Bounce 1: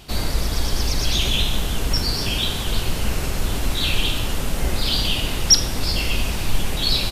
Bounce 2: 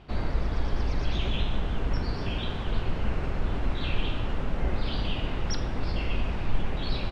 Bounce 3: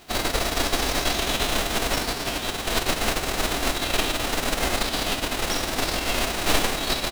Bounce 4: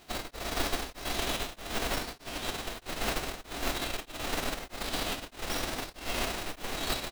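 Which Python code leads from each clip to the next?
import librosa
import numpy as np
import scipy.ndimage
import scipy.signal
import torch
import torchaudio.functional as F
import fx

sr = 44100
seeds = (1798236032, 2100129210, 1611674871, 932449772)

y1 = scipy.signal.sosfilt(scipy.signal.butter(2, 1900.0, 'lowpass', fs=sr, output='sos'), x)
y1 = F.gain(torch.from_numpy(y1), -5.0).numpy()
y2 = fx.envelope_flatten(y1, sr, power=0.3)
y2 = fx.small_body(y2, sr, hz=(280.0, 690.0, 3900.0), ring_ms=20, db=6)
y2 = F.gain(torch.from_numpy(y2), -1.0).numpy()
y3 = fx.tracing_dist(y2, sr, depth_ms=0.14)
y3 = y3 * np.abs(np.cos(np.pi * 1.6 * np.arange(len(y3)) / sr))
y3 = F.gain(torch.from_numpy(y3), -6.5).numpy()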